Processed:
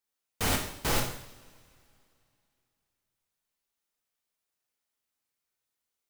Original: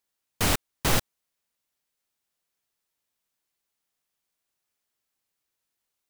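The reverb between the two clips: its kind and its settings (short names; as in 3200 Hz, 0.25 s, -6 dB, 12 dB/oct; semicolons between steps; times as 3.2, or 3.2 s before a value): two-slope reverb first 0.67 s, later 2.8 s, from -22 dB, DRR -0.5 dB; gain -6.5 dB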